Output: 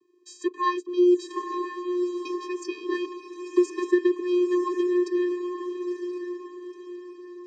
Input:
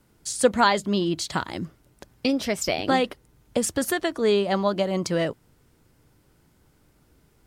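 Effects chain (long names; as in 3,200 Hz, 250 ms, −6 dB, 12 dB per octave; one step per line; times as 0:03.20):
0:03.04–0:03.87: sub-harmonics by changed cycles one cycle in 2, inverted
channel vocoder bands 16, square 356 Hz
feedback delay with all-pass diffusion 958 ms, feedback 41%, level −7 dB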